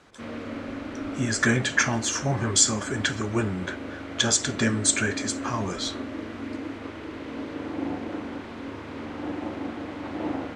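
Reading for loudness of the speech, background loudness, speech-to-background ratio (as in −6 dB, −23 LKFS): −24.5 LKFS, −35.0 LKFS, 10.5 dB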